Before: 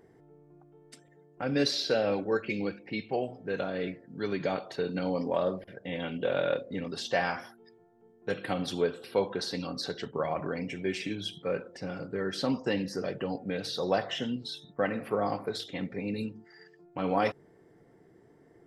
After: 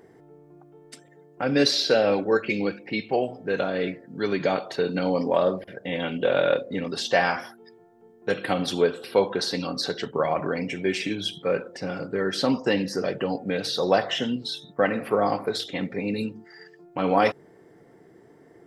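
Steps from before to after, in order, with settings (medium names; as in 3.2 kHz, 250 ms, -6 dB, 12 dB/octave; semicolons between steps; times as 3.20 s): bass shelf 110 Hz -9.5 dB; trim +7.5 dB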